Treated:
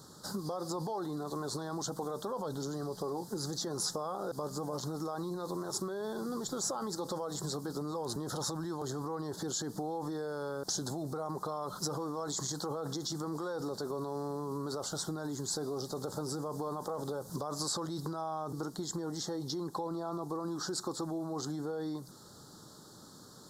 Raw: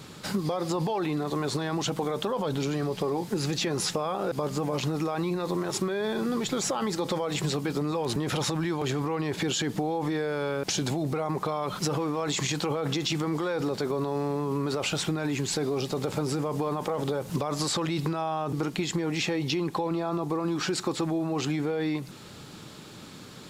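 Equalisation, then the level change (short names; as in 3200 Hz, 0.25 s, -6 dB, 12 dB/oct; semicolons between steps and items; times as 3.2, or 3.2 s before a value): Chebyshev band-stop 1300–4600 Hz, order 2; tone controls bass -2 dB, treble -4 dB; high shelf 4000 Hz +10 dB; -7.5 dB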